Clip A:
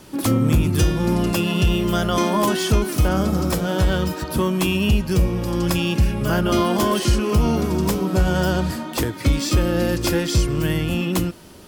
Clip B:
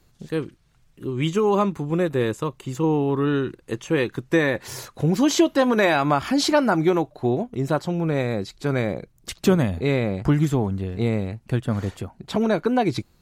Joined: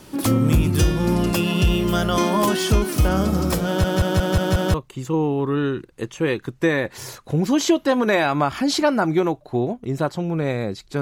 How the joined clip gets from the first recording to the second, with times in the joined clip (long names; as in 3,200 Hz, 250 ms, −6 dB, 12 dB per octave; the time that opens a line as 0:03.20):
clip A
0:03.66: stutter in place 0.18 s, 6 plays
0:04.74: continue with clip B from 0:02.44